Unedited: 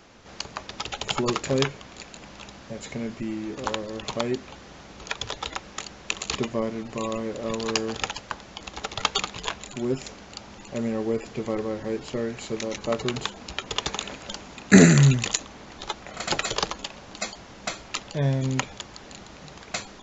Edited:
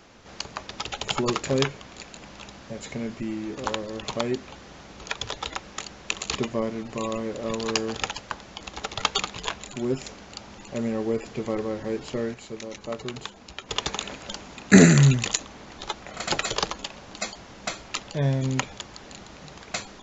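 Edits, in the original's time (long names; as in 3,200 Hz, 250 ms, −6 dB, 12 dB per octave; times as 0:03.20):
0:12.34–0:13.69: clip gain −6.5 dB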